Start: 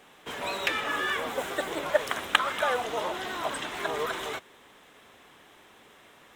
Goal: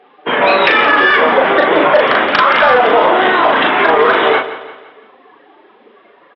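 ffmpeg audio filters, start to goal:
ffmpeg -i in.wav -filter_complex "[0:a]lowpass=2800,afftdn=noise_reduction=20:noise_floor=-46,highpass=220,aresample=11025,asoftclip=type=tanh:threshold=-19.5dB,aresample=44100,asplit=2[link_01][link_02];[link_02]adelay=38,volume=-3.5dB[link_03];[link_01][link_03]amix=inputs=2:normalize=0,asplit=2[link_04][link_05];[link_05]aecho=0:1:171|342|513|684:0.188|0.0848|0.0381|0.0172[link_06];[link_04][link_06]amix=inputs=2:normalize=0,alimiter=level_in=23.5dB:limit=-1dB:release=50:level=0:latency=1" -ar 24000 -c:a libmp3lame -b:a 112k out.mp3

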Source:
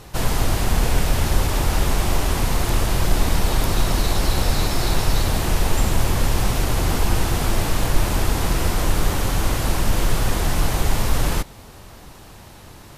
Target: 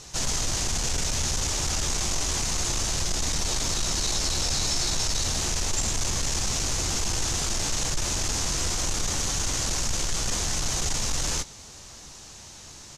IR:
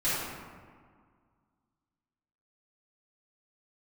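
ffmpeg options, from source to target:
-filter_complex "[0:a]highshelf=frequency=3000:gain=11,asoftclip=type=tanh:threshold=-14dB,lowpass=frequency=6500:width_type=q:width=3.2,asplit=2[link_01][link_02];[link_02]adelay=14,volume=-11.5dB[link_03];[link_01][link_03]amix=inputs=2:normalize=0,volume=-8dB"

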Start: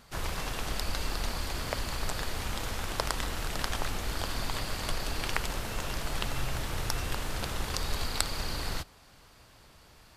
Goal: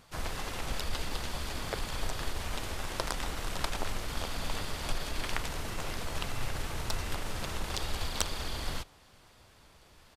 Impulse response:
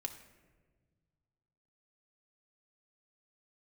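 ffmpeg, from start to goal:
-filter_complex "[0:a]asplit=2[link_01][link_02];[link_02]asetrate=33038,aresample=44100,atempo=1.33484,volume=-1dB[link_03];[link_01][link_03]amix=inputs=2:normalize=0,aeval=exprs='(tanh(2*val(0)+0.65)-tanh(0.65))/2':channel_layout=same,volume=-1dB"

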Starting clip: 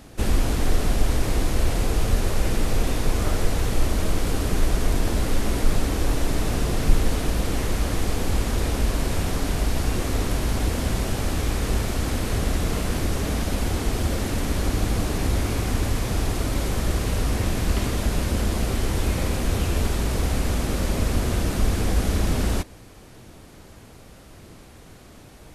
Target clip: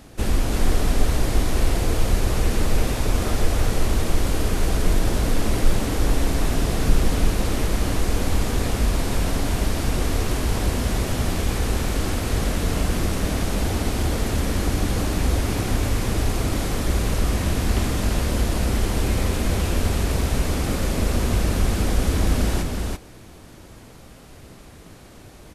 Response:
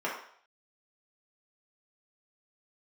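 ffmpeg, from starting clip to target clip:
-af "aecho=1:1:339:0.668"

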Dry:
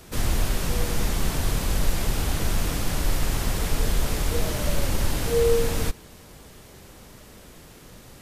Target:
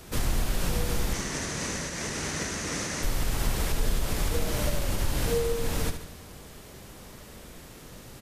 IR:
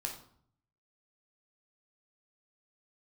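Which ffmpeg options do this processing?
-filter_complex "[0:a]acompressor=threshold=-22dB:ratio=6,asettb=1/sr,asplit=3[link_01][link_02][link_03];[link_01]atrim=end=1.134[link_04];[link_02]atrim=start=1.13:end=3.03,asetpts=PTS-STARTPTS,afade=type=in:duration=0.004:curve=qsin,afade=type=out:start_time=1.896:duration=0.004:curve=qsin,highpass=120,equalizer=frequency=120:width_type=q:width=4:gain=-7,equalizer=frequency=770:width_type=q:width=4:gain=-4,equalizer=frequency=1900:width_type=q:width=4:gain=7,equalizer=frequency=3300:width_type=q:width=4:gain=-3,equalizer=frequency=6100:width_type=q:width=4:gain=9,lowpass=frequency=9500:width=0.5412,lowpass=frequency=9500:width=1.3066[link_05];[link_03]atrim=start=3.026[link_06];[link_04][link_05]acrossfade=duration=0.004:curve1=hsin:curve2=qsin[link_07];[link_07][link_06]acrossfade=duration=0.004:curve1=qsin:curve2=hsin,asplit=2[link_08][link_09];[link_09]aecho=0:1:72|144|216|288|360|432:0.355|0.185|0.0959|0.0499|0.0259|0.0135[link_10];[link_08][link_10]amix=inputs=2:normalize=0"

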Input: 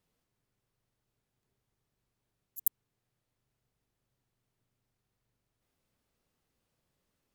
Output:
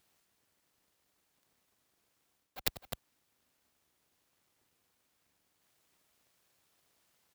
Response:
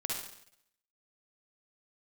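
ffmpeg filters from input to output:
-filter_complex "[0:a]lowshelf=frequency=330:gain=-7.5,aeval=exprs='abs(val(0))':channel_layout=same,areverse,acompressor=threshold=-39dB:ratio=16,areverse,highpass=48,aecho=1:1:93|257:0.106|0.282,acrossover=split=1100[link_01][link_02];[link_01]aeval=exprs='(mod(126*val(0)+1,2)-1)/126':channel_layout=same[link_03];[link_03][link_02]amix=inputs=2:normalize=0,volume=13dB"

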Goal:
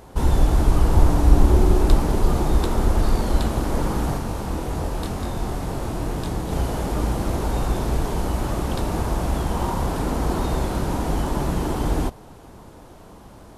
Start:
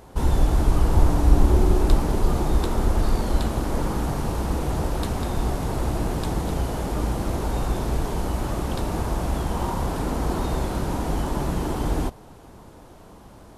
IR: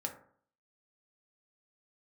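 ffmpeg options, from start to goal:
-filter_complex "[0:a]asplit=3[link_01][link_02][link_03];[link_01]afade=type=out:start_time=4.17:duration=0.02[link_04];[link_02]flanger=delay=22.5:depth=3:speed=2.1,afade=type=in:start_time=4.17:duration=0.02,afade=type=out:start_time=6.51:duration=0.02[link_05];[link_03]afade=type=in:start_time=6.51:duration=0.02[link_06];[link_04][link_05][link_06]amix=inputs=3:normalize=0,volume=2dB"

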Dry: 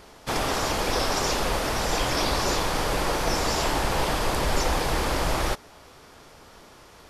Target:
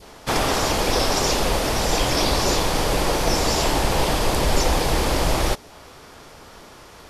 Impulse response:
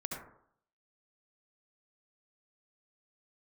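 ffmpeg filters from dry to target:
-af "adynamicequalizer=threshold=0.00708:dfrequency=1400:dqfactor=1.1:tfrequency=1400:tqfactor=1.1:attack=5:release=100:ratio=0.375:range=2.5:mode=cutabove:tftype=bell,volume=5.5dB"

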